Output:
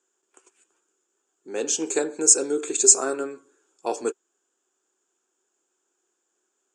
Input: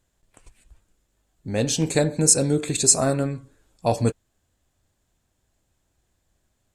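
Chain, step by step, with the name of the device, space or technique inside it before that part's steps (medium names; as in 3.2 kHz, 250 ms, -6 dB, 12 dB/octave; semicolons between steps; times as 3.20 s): phone speaker on a table (cabinet simulation 340–8800 Hz, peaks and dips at 380 Hz +10 dB, 610 Hz -10 dB, 1.4 kHz +6 dB, 2 kHz -8 dB, 4.1 kHz -9 dB, 6.9 kHz +9 dB); trim -2 dB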